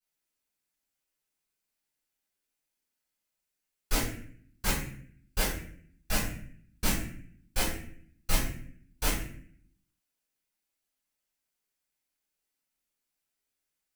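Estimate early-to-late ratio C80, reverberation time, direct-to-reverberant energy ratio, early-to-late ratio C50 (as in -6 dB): 6.5 dB, 0.55 s, -12.0 dB, 3.0 dB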